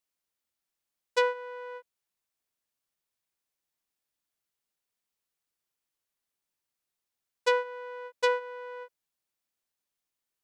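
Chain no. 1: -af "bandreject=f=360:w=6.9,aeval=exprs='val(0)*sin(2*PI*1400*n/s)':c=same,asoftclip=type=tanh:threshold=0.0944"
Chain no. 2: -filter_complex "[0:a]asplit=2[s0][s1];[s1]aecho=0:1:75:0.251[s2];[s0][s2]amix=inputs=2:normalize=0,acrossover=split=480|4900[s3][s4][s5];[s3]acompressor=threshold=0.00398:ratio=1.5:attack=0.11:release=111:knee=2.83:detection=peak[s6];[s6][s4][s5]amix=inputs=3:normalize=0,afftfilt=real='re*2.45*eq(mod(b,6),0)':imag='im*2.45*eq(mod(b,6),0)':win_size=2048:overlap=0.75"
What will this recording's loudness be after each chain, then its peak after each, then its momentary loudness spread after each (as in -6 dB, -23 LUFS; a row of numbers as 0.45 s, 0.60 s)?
-35.0 LUFS, -38.0 LUFS; -20.5 dBFS, -21.0 dBFS; 14 LU, 19 LU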